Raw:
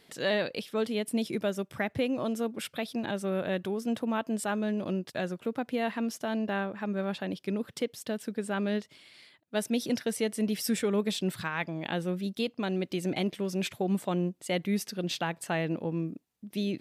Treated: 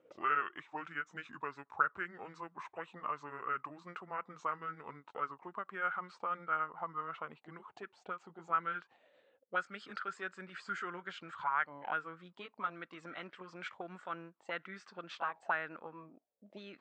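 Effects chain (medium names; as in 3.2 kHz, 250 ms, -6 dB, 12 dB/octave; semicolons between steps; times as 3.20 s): pitch bend over the whole clip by -6.5 st ending unshifted; auto-wah 490–1400 Hz, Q 7.5, up, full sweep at -28 dBFS; elliptic low-pass 8 kHz; trim +11.5 dB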